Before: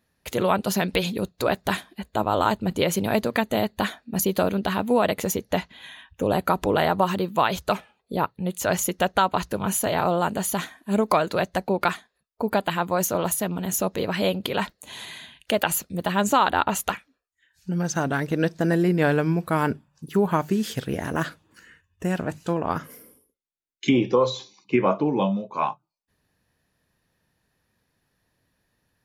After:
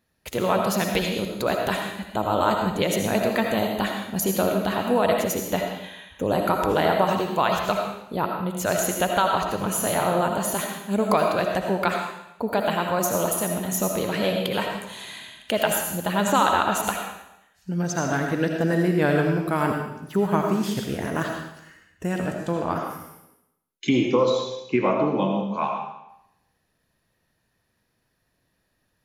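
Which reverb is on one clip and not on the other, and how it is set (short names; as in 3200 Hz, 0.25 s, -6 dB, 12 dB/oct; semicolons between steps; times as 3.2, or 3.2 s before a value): digital reverb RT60 0.83 s, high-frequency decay 1×, pre-delay 40 ms, DRR 2 dB; gain -1.5 dB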